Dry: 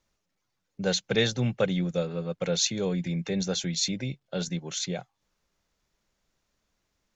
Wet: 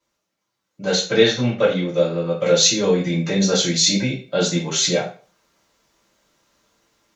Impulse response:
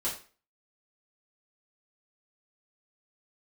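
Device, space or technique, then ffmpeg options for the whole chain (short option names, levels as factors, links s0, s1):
far laptop microphone: -filter_complex "[0:a]asettb=1/sr,asplit=3[s0][s1][s2];[s0]atrim=end=1.194[s3];[s1]atrim=start=1.19:end=2.01,asetpts=PTS-STARTPTS,afade=t=in:d=0.004:c=qsin,afade=t=out:st=0.816:d=0.004:c=qsin,lowpass=f=6100:w=0.5412,lowpass=f=6100:w=1.3066[s4];[s2]atrim=start=2.006[s5];[s3][s4]acrossfade=d=0.004:c1=hsin:c2=qsin[s6];[s6][s5]acrossfade=d=0.004:c1=qsin:c2=hsin,lowshelf=f=130:g=-5[s7];[1:a]atrim=start_sample=2205[s8];[s7][s8]afir=irnorm=-1:irlink=0,highpass=f=140:p=1,dynaudnorm=f=510:g=3:m=3.16"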